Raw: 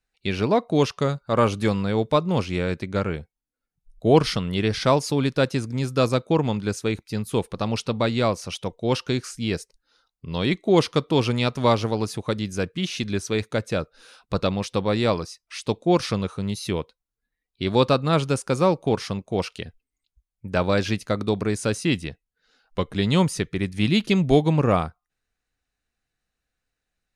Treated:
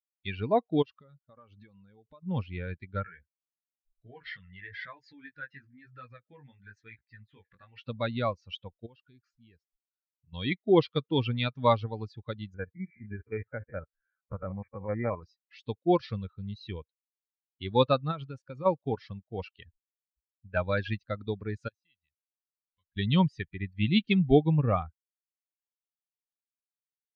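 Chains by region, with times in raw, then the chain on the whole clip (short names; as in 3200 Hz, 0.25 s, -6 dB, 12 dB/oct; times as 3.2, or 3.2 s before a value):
0.82–2.23 compressor 20:1, threshold -29 dBFS + bell 110 Hz -2.5 dB 0.81 oct
3.04–7.86 compressor 3:1, threshold -30 dBFS + bell 1800 Hz +13.5 dB 0.93 oct + chorus 1 Hz, delay 16.5 ms, depth 5.1 ms
8.86–10.33 high shelf 5300 Hz -5.5 dB + compressor 2:1, threshold -43 dBFS
12.54–15.23 stepped spectrum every 50 ms + dynamic EQ 870 Hz, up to +3 dB, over -36 dBFS, Q 0.87 + brick-wall FIR low-pass 2400 Hz
18.11–18.66 G.711 law mismatch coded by A + compressor 16:1, threshold -20 dBFS
21.68–22.97 passive tone stack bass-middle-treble 5-5-5 + compressor 2:1, threshold -50 dBFS
whole clip: per-bin expansion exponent 2; Chebyshev low-pass 3700 Hz, order 4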